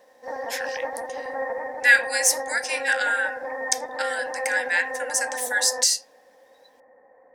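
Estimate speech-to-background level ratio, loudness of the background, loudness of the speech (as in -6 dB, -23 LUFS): 8.0 dB, -31.0 LUFS, -23.0 LUFS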